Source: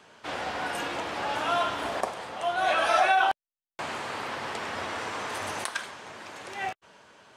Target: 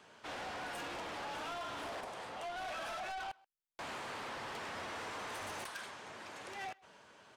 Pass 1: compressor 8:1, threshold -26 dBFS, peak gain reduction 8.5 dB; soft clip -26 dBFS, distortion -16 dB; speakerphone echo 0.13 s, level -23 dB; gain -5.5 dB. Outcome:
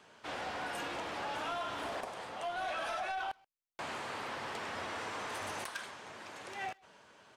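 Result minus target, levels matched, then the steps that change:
soft clip: distortion -7 dB
change: soft clip -34 dBFS, distortion -8 dB

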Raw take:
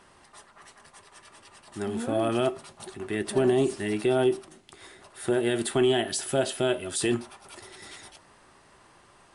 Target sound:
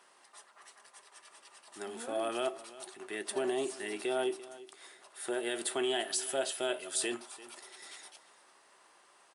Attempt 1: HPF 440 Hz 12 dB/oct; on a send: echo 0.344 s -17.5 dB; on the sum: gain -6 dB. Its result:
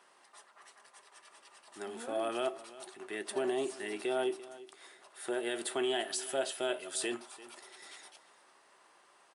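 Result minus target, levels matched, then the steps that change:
8000 Hz band -3.0 dB
add after HPF: high shelf 4400 Hz +4.5 dB

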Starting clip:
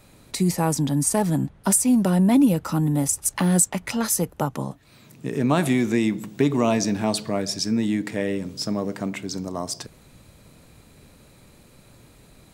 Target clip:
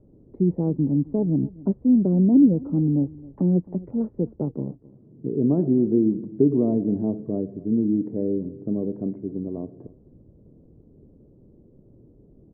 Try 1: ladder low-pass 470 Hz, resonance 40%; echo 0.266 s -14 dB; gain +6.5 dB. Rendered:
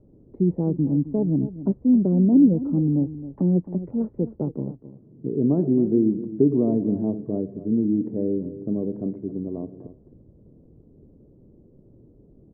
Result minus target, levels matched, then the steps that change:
echo-to-direct +7 dB
change: echo 0.266 s -21 dB

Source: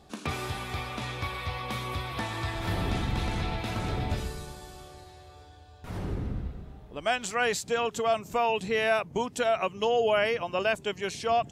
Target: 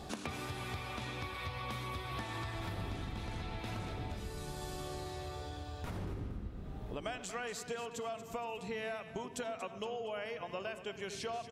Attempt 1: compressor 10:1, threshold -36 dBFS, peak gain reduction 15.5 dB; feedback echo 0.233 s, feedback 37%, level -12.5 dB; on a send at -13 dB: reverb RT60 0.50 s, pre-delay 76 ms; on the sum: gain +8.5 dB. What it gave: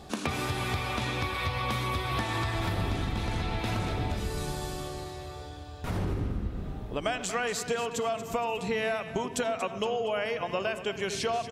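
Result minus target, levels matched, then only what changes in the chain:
compressor: peak gain reduction -10.5 dB
change: compressor 10:1, threshold -47.5 dBFS, peak gain reduction 26 dB

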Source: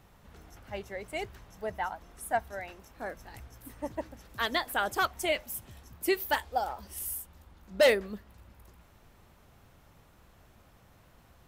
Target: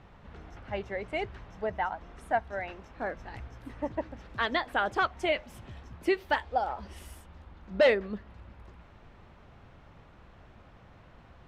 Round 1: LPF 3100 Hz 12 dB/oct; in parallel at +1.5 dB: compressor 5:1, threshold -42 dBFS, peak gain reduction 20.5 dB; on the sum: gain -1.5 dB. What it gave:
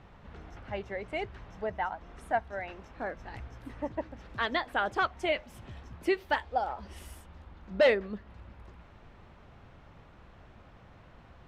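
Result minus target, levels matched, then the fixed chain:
compressor: peak gain reduction +5 dB
LPF 3100 Hz 12 dB/oct; in parallel at +1.5 dB: compressor 5:1, threshold -35.5 dBFS, peak gain reduction 15 dB; on the sum: gain -1.5 dB

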